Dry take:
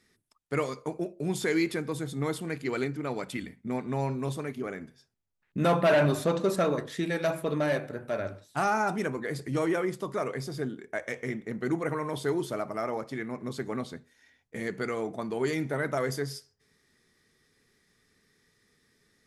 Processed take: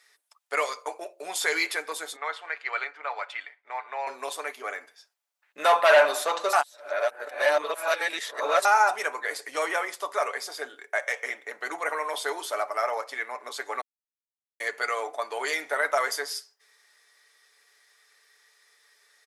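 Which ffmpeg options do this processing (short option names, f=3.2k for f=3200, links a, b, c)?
-filter_complex "[0:a]asettb=1/sr,asplit=3[a][b][c];[a]atrim=end=2.164[d];[b]atrim=start=2.16:end=4.07,asetpts=PTS-STARTPTS,afade=t=in:d=0.004:c=qsin,afade=t=out:st=1.906:d=0.004:c=qsin,highpass=710,lowpass=2.6k[e];[c]atrim=start=4.066[f];[d][e]acrossfade=d=0.004:c1=hsin:c2=qsin[g];[g][f]acrossfade=d=0.004:c1=qsin:c2=hsin,asplit=5[h][i][j][k][l];[h]atrim=end=6.532[m];[i]atrim=start=6.528:end=8.652,asetpts=PTS-STARTPTS,areverse[n];[j]atrim=start=8.648:end=13.81,asetpts=PTS-STARTPTS,afade=t=out:st=5.158:d=0.004:c=hsin[o];[k]atrim=start=13.81:end=14.6,asetpts=PTS-STARTPTS,volume=0[p];[l]atrim=start=14.6,asetpts=PTS-STARTPTS,afade=t=in:d=0.004:c=hsin[q];[m][n]acrossfade=d=0.004:c1=hsin:c2=hsin[r];[o][p][q]concat=n=3:v=0:a=1[s];[r][s]acrossfade=d=0.004:c1=hsin:c2=hsin,highpass=f=630:w=0.5412,highpass=f=630:w=1.3066,aecho=1:1:6.9:0.42,volume=7.5dB"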